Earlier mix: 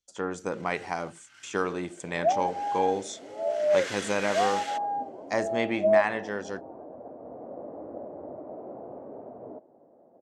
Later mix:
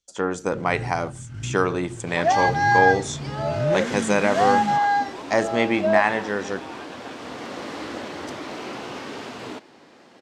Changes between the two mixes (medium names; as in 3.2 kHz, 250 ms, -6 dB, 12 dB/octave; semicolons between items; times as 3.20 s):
speech +7.0 dB; first sound: remove high-pass 1.5 kHz 12 dB/octave; second sound: remove four-pole ladder low-pass 710 Hz, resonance 60%